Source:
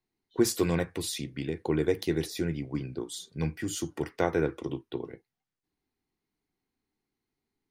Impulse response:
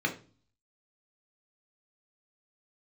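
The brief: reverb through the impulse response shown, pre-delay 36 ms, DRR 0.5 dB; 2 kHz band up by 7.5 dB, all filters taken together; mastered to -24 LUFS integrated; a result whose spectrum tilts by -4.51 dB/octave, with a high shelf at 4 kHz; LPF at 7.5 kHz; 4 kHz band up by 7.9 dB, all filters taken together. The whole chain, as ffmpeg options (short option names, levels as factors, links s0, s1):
-filter_complex "[0:a]lowpass=7500,equalizer=f=2000:t=o:g=7,highshelf=f=4000:g=6,equalizer=f=4000:t=o:g=4.5,asplit=2[s0][s1];[1:a]atrim=start_sample=2205,adelay=36[s2];[s1][s2]afir=irnorm=-1:irlink=0,volume=0.355[s3];[s0][s3]amix=inputs=2:normalize=0,volume=1.33"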